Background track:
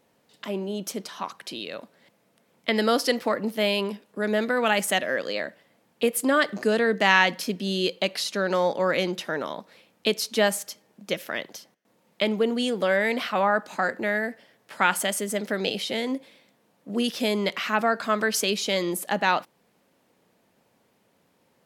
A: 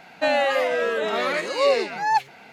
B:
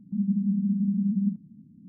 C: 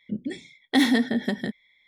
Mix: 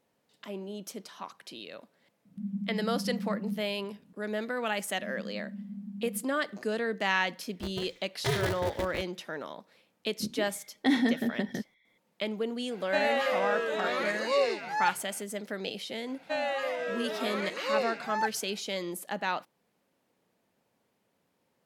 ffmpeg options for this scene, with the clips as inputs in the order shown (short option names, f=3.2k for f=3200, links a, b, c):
-filter_complex "[2:a]asplit=2[a][b];[3:a]asplit=2[c][d];[1:a]asplit=2[e][f];[0:a]volume=-9dB[g];[b]aecho=1:1:3.3:0.65[h];[c]aeval=exprs='val(0)*sgn(sin(2*PI*140*n/s))':c=same[i];[d]lowpass=f=2.9k:p=1[j];[e]highpass=100[k];[a]atrim=end=1.88,asetpts=PTS-STARTPTS,volume=-9.5dB,afade=t=in:d=0.004:c=hsin,afade=t=out:st=1.876:d=0.004:c=hsin,adelay=2250[l];[h]atrim=end=1.88,asetpts=PTS-STARTPTS,volume=-14.5dB,afade=t=in:d=0.004:c=hsin,afade=t=out:st=1.876:d=0.004:c=hsin,adelay=215649S[m];[i]atrim=end=1.87,asetpts=PTS-STARTPTS,volume=-10dB,afade=t=in:d=0.004:c=hsin,afade=t=out:st=1.866:d=0.004:c=hsin,adelay=7510[n];[j]atrim=end=1.87,asetpts=PTS-STARTPTS,volume=-5dB,afade=t=in:d=0.004:c=hsin,afade=t=out:st=1.866:d=0.004:c=hsin,adelay=10110[o];[k]atrim=end=2.52,asetpts=PTS-STARTPTS,volume=-7dB,afade=t=in:d=0.004:c=hsin,afade=t=out:st=2.516:d=0.004:c=hsin,adelay=12710[p];[f]atrim=end=2.52,asetpts=PTS-STARTPTS,volume=-10.5dB,afade=t=in:d=0.004:c=hsin,afade=t=out:st=2.516:d=0.004:c=hsin,adelay=16080[q];[g][l][m][n][o][p][q]amix=inputs=7:normalize=0"